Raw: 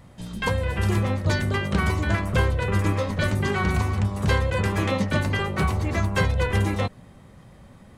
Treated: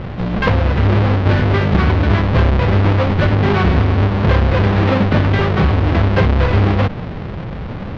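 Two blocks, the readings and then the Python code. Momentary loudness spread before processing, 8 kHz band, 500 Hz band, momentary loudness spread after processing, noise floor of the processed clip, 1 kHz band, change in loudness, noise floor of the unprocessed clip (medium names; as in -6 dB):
3 LU, no reading, +9.0 dB, 7 LU, -26 dBFS, +8.5 dB, +9.5 dB, -49 dBFS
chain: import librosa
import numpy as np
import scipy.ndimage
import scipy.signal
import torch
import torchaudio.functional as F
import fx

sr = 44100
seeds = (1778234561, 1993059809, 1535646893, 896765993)

y = fx.halfwave_hold(x, sr)
y = scipy.signal.sosfilt(scipy.signal.bessel(6, 2700.0, 'lowpass', norm='mag', fs=sr, output='sos'), y)
y = fx.env_flatten(y, sr, amount_pct=50)
y = F.gain(torch.from_numpy(y), 2.5).numpy()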